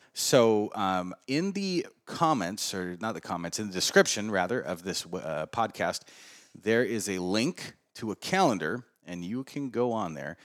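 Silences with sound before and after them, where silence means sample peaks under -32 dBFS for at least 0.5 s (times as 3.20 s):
5.97–6.66 s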